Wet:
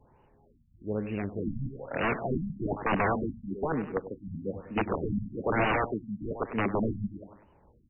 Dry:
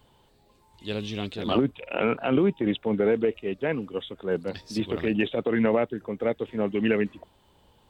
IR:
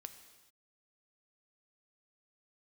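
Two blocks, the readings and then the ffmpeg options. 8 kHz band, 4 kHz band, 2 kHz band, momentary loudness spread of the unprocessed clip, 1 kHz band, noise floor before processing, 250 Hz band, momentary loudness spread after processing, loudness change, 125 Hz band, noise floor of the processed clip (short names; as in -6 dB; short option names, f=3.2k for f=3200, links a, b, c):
n/a, -11.0 dB, -0.5 dB, 9 LU, +3.0 dB, -62 dBFS, -6.0 dB, 10 LU, -5.0 dB, 0.0 dB, -63 dBFS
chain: -filter_complex "[0:a]highshelf=f=3.3k:g=-8.5,aeval=exprs='(mod(9.44*val(0)+1,2)-1)/9.44':c=same,asplit=2[a][b];[b]aecho=0:1:99|198|297|396:0.251|0.108|0.0464|0.02[c];[a][c]amix=inputs=2:normalize=0,afftfilt=real='re*lt(b*sr/1024,250*pow(3000/250,0.5+0.5*sin(2*PI*1.1*pts/sr)))':imag='im*lt(b*sr/1024,250*pow(3000/250,0.5+0.5*sin(2*PI*1.1*pts/sr)))':win_size=1024:overlap=0.75"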